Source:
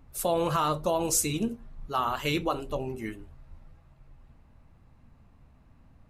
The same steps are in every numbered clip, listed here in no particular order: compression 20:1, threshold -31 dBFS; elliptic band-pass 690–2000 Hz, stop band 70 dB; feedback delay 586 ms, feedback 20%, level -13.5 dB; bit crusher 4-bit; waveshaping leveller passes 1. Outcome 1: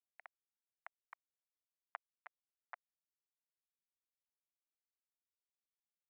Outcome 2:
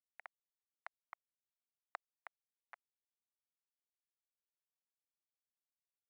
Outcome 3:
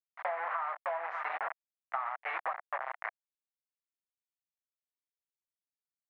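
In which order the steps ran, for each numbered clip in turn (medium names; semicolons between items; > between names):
compression > feedback delay > bit crusher > waveshaping leveller > elliptic band-pass; feedback delay > compression > bit crusher > elliptic band-pass > waveshaping leveller; waveshaping leveller > feedback delay > bit crusher > elliptic band-pass > compression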